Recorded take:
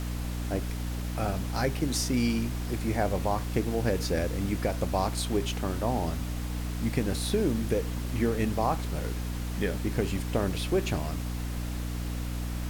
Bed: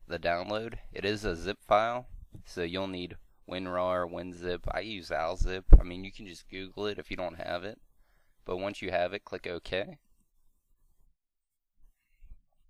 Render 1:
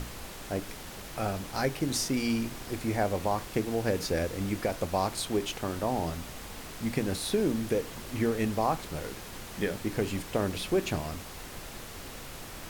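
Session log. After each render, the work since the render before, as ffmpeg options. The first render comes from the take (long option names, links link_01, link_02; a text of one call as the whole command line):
ffmpeg -i in.wav -af "bandreject=frequency=60:width_type=h:width=6,bandreject=frequency=120:width_type=h:width=6,bandreject=frequency=180:width_type=h:width=6,bandreject=frequency=240:width_type=h:width=6,bandreject=frequency=300:width_type=h:width=6" out.wav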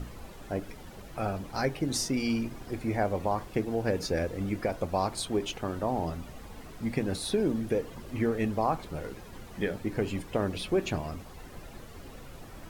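ffmpeg -i in.wav -af "afftdn=noise_reduction=11:noise_floor=-43" out.wav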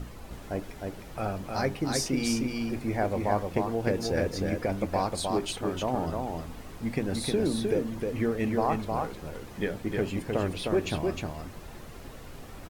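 ffmpeg -i in.wav -af "aecho=1:1:309:0.668" out.wav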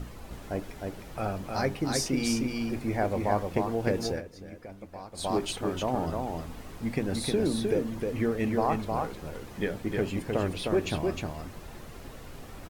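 ffmpeg -i in.wav -filter_complex "[0:a]asplit=3[link_01][link_02][link_03];[link_01]atrim=end=4.22,asetpts=PTS-STARTPTS,afade=type=out:start_time=4.08:duration=0.14:silence=0.177828[link_04];[link_02]atrim=start=4.22:end=5.13,asetpts=PTS-STARTPTS,volume=-15dB[link_05];[link_03]atrim=start=5.13,asetpts=PTS-STARTPTS,afade=type=in:duration=0.14:silence=0.177828[link_06];[link_04][link_05][link_06]concat=n=3:v=0:a=1" out.wav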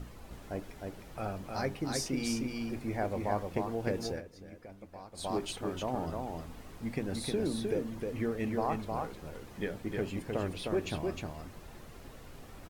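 ffmpeg -i in.wav -af "volume=-5.5dB" out.wav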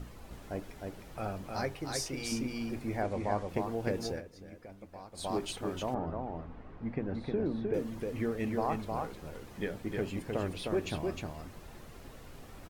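ffmpeg -i in.wav -filter_complex "[0:a]asettb=1/sr,asplit=3[link_01][link_02][link_03];[link_01]atrim=end=1.654[link_04];[link_02]atrim=start=1.65:end=2.32,asetpts=PTS-STARTPTS,afade=type=in:duration=0.004:curve=qsin,afade=type=out:start_time=0.666:duration=0.004:curve=qsin,equalizer=frequency=220:width_type=o:width=0.77:gain=-11.5[link_05];[link_03]atrim=start=2.316[link_06];[link_04][link_05]acrossfade=duration=0.004:curve1=hsin:curve2=qsin[link_07];[link_07][link_06]acrossfade=duration=0.004:curve1=qsin:curve2=hsin,asettb=1/sr,asplit=3[link_08][link_09][link_10];[link_08]atrim=end=3.024[link_11];[link_09]atrim=start=3.02:end=3.49,asetpts=PTS-STARTPTS,afade=type=in:duration=0.004:curve=qsin,afade=type=out:start_time=0.466:duration=0.004:curve=qsin,lowpass=frequency=9500:width=0.5412,lowpass=frequency=9500:width=1.3066[link_12];[link_10]atrim=start=3.486[link_13];[link_11][link_12]acrossfade=duration=0.004:curve1=hsin:curve2=qsin[link_14];[link_14][link_13]acrossfade=duration=0.004:curve1=qsin:curve2=hsin,asettb=1/sr,asplit=3[link_15][link_16][link_17];[link_15]atrim=end=5.944[link_18];[link_16]atrim=start=5.94:end=7.74,asetpts=PTS-STARTPTS,afade=type=in:duration=0.004:curve=qsin,afade=type=out:start_time=1.796:duration=0.004:curve=qsin,lowpass=1700[link_19];[link_17]atrim=start=7.736[link_20];[link_18][link_19]acrossfade=duration=0.004:curve1=hsin:curve2=qsin[link_21];[link_21][link_20]acrossfade=duration=0.004:curve1=qsin:curve2=hsin" out.wav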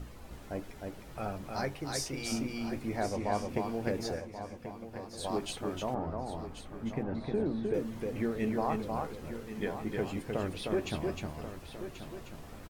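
ffmpeg -i in.wav -filter_complex "[0:a]asplit=2[link_01][link_02];[link_02]adelay=14,volume=-12dB[link_03];[link_01][link_03]amix=inputs=2:normalize=0,aecho=1:1:1085|2170|3255:0.282|0.062|0.0136" out.wav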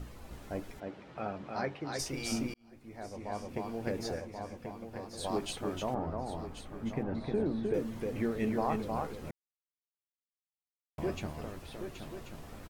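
ffmpeg -i in.wav -filter_complex "[0:a]asplit=3[link_01][link_02][link_03];[link_01]afade=type=out:start_time=0.79:duration=0.02[link_04];[link_02]highpass=140,lowpass=3500,afade=type=in:start_time=0.79:duration=0.02,afade=type=out:start_time=1.98:duration=0.02[link_05];[link_03]afade=type=in:start_time=1.98:duration=0.02[link_06];[link_04][link_05][link_06]amix=inputs=3:normalize=0,asplit=4[link_07][link_08][link_09][link_10];[link_07]atrim=end=2.54,asetpts=PTS-STARTPTS,afade=type=out:start_time=2.536:duration=0.004:curve=hsin[link_11];[link_08]atrim=start=2.54:end=9.31,asetpts=PTS-STARTPTS,afade=type=in:duration=1.77,afade=type=out:start_time=6.766:duration=0.004:curve=hsin[link_12];[link_09]atrim=start=9.31:end=10.98,asetpts=PTS-STARTPTS,volume=0[link_13];[link_10]atrim=start=10.98,asetpts=PTS-STARTPTS,afade=type=in:duration=0.004:curve=hsin[link_14];[link_11][link_12][link_13][link_14]concat=n=4:v=0:a=1" out.wav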